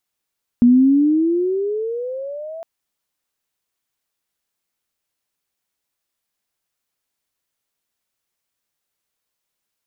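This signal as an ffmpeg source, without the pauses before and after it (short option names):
-f lavfi -i "aevalsrc='pow(10,(-7-22*t/2.01)/20)*sin(2*PI*237*2.01/(18*log(2)/12)*(exp(18*log(2)/12*t/2.01)-1))':d=2.01:s=44100"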